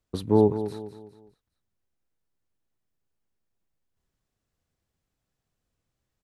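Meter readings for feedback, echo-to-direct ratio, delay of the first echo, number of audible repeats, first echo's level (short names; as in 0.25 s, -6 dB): 39%, -11.0 dB, 0.204 s, 3, -11.5 dB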